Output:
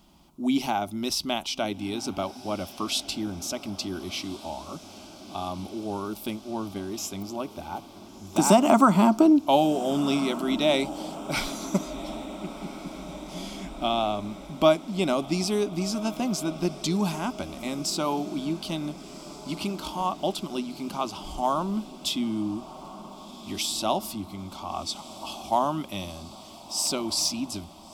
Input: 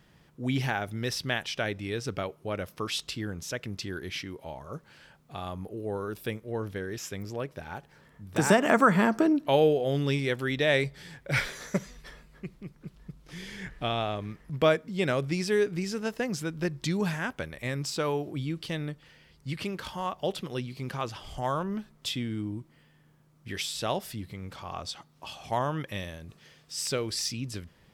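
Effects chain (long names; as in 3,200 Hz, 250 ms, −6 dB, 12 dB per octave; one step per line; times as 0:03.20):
phaser with its sweep stopped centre 470 Hz, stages 6
on a send: feedback delay with all-pass diffusion 1,435 ms, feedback 64%, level −15.5 dB
on the sum: level +7 dB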